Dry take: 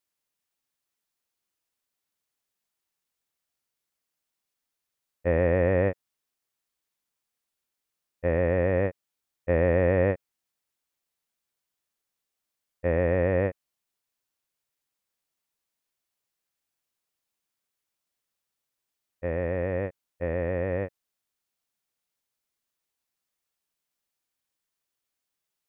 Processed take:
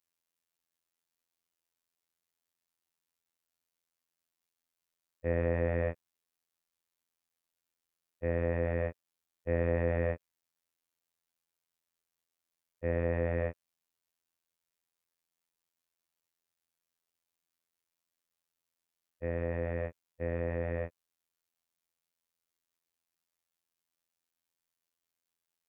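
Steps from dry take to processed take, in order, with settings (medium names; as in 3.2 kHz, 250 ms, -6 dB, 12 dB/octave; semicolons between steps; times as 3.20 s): robot voice 84.7 Hz; in parallel at +1 dB: peak limiter -20.5 dBFS, peak gain reduction 11 dB; on the sum: trim -8.5 dB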